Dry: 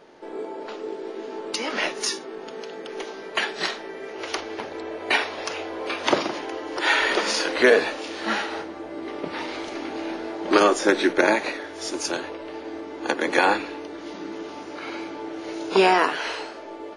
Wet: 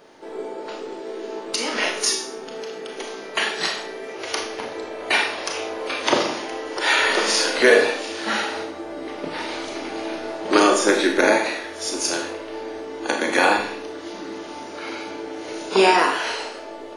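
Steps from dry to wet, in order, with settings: high shelf 7200 Hz +11 dB; Schroeder reverb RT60 0.53 s, combs from 26 ms, DRR 2.5 dB

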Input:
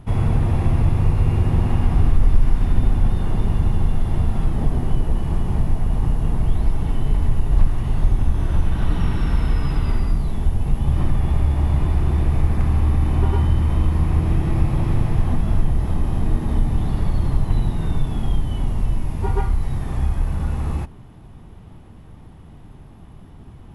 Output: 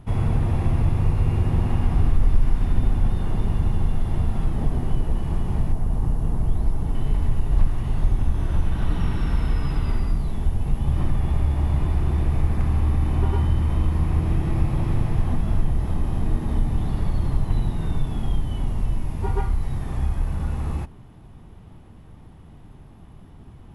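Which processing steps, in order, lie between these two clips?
5.72–6.95 bell 2700 Hz -6.5 dB 1.6 oct; gain -3 dB

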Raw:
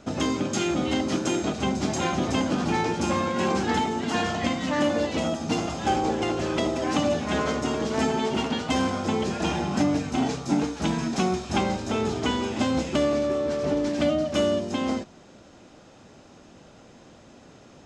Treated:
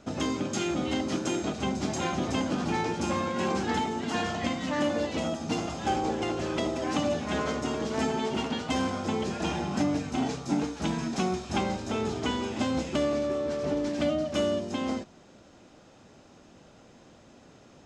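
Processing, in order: gain -4 dB

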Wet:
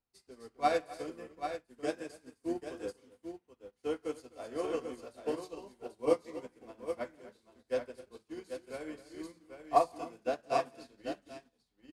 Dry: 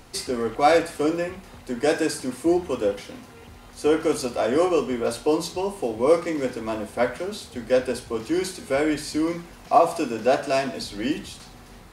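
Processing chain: tapped delay 0.168/0.258/0.789 s -13.5/-8.5/-3.5 dB; upward expander 2.5:1, over -36 dBFS; gain -7.5 dB

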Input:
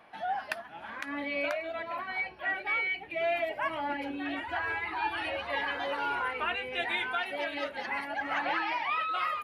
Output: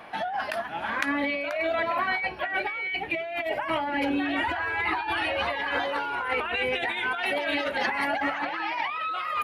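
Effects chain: negative-ratio compressor -37 dBFS, ratio -1; gain +8.5 dB

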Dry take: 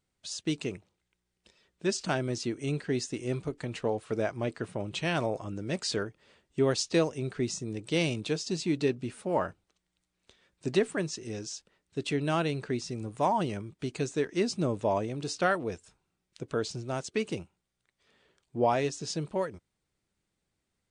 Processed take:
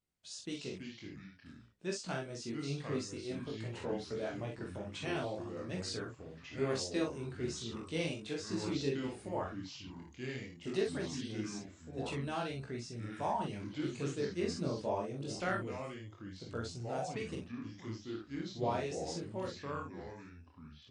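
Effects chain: doubler 43 ms -4 dB; chorus voices 2, 0.17 Hz, delay 19 ms, depth 4 ms; echoes that change speed 0.208 s, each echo -4 st, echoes 2, each echo -6 dB; gain -7 dB

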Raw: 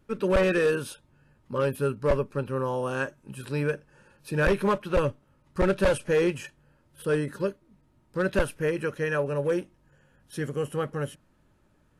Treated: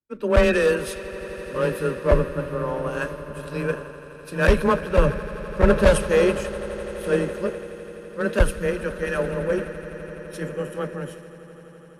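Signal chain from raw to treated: swelling echo 84 ms, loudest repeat 8, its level -15 dB; frequency shift +17 Hz; three-band expander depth 100%; gain +2 dB

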